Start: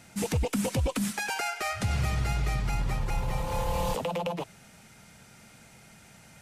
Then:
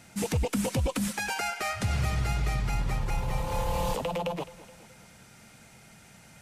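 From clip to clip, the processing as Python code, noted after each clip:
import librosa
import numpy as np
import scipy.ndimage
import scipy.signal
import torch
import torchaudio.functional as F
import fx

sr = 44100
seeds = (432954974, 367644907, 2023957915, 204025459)

y = fx.echo_feedback(x, sr, ms=211, feedback_pct=53, wet_db=-18.5)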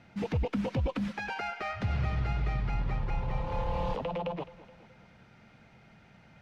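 y = fx.air_absorb(x, sr, metres=270.0)
y = F.gain(torch.from_numpy(y), -2.0).numpy()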